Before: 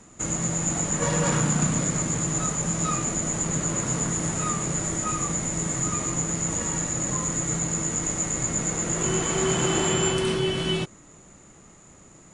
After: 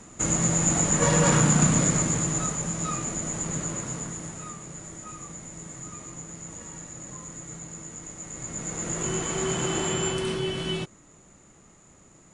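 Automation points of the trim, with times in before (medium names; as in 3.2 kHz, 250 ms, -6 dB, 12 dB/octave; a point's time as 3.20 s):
1.87 s +3 dB
2.73 s -4 dB
3.60 s -4 dB
4.61 s -13.5 dB
8.17 s -13.5 dB
8.87 s -4 dB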